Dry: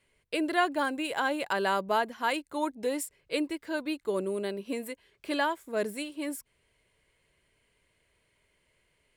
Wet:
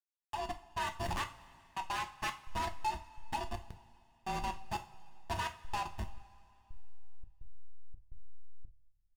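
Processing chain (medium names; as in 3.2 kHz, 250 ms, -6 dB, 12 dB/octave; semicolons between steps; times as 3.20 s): sorted samples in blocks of 16 samples; mistuned SSB +370 Hz 360–3200 Hz; hysteresis with a dead band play -25 dBFS; comb 1.1 ms, depth 98%; compression 6:1, threshold -40 dBFS, peak gain reduction 18.5 dB; trance gate "xxx.xxx...xxx." 85 bpm -60 dB; level rider gain up to 10 dB; saturation -34 dBFS, distortion -7 dB; two-slope reverb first 0.3 s, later 2.7 s, from -20 dB, DRR 5 dB; trim +1.5 dB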